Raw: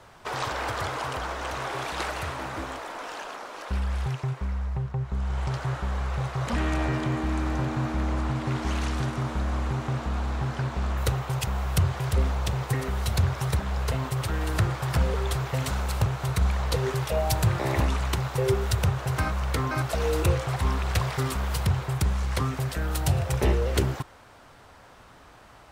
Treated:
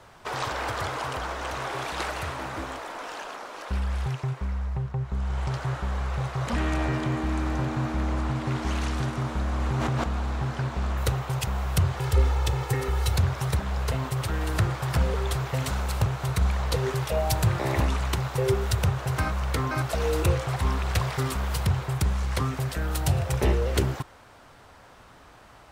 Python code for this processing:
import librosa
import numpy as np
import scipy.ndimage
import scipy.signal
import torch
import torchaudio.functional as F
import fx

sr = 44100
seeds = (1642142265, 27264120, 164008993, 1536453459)

y = fx.env_flatten(x, sr, amount_pct=100, at=(9.6, 10.04))
y = fx.comb(y, sr, ms=2.3, depth=0.57, at=(11.98, 13.17))